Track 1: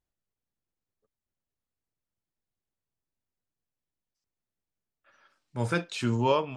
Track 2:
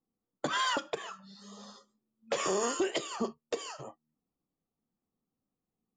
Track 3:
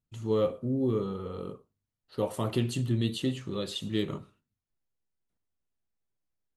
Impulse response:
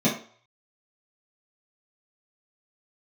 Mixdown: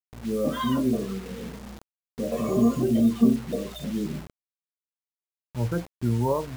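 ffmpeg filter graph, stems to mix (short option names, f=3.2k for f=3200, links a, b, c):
-filter_complex "[0:a]aeval=exprs='val(0)+0.00355*(sin(2*PI*60*n/s)+sin(2*PI*2*60*n/s)/2+sin(2*PI*3*60*n/s)/3+sin(2*PI*4*60*n/s)/4+sin(2*PI*5*60*n/s)/5)':c=same,lowpass=1.1k,lowshelf=f=160:g=8.5,volume=-1dB[a];[1:a]lowshelf=f=110:t=q:w=1.5:g=-13,volume=1dB,asplit=2[b][c];[c]volume=-18.5dB[d];[2:a]volume=-9dB,asplit=3[e][f][g];[f]volume=-13dB[h];[g]apad=whole_len=262911[i];[b][i]sidechaincompress=threshold=-45dB:ratio=8:attack=9.1:release=206[j];[3:a]atrim=start_sample=2205[k];[d][h]amix=inputs=2:normalize=0[l];[l][k]afir=irnorm=-1:irlink=0[m];[a][j][e][m]amix=inputs=4:normalize=0,afftdn=nr=16:nf=-33,acrusher=bits=6:mix=0:aa=0.000001"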